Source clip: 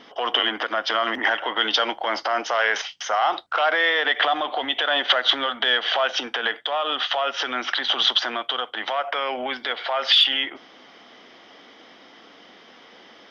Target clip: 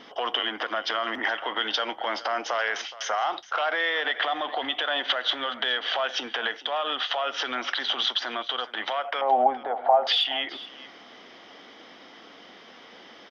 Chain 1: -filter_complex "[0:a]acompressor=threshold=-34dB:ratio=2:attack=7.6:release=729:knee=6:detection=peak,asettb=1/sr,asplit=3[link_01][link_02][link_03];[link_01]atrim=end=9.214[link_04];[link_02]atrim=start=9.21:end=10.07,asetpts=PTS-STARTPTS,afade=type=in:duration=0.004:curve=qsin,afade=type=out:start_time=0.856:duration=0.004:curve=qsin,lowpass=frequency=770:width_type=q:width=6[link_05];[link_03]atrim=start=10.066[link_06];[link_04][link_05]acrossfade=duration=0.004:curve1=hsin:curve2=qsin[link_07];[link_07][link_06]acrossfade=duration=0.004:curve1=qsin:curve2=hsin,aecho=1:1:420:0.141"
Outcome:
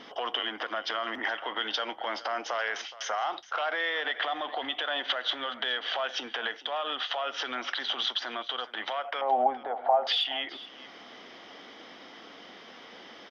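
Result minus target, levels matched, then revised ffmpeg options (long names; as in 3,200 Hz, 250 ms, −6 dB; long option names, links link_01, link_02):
downward compressor: peak gain reduction +4 dB
-filter_complex "[0:a]acompressor=threshold=-25.5dB:ratio=2:attack=7.6:release=729:knee=6:detection=peak,asettb=1/sr,asplit=3[link_01][link_02][link_03];[link_01]atrim=end=9.214[link_04];[link_02]atrim=start=9.21:end=10.07,asetpts=PTS-STARTPTS,afade=type=in:duration=0.004:curve=qsin,afade=type=out:start_time=0.856:duration=0.004:curve=qsin,lowpass=frequency=770:width_type=q:width=6[link_05];[link_03]atrim=start=10.066[link_06];[link_04][link_05]acrossfade=duration=0.004:curve1=hsin:curve2=qsin[link_07];[link_07][link_06]acrossfade=duration=0.004:curve1=qsin:curve2=hsin,aecho=1:1:420:0.141"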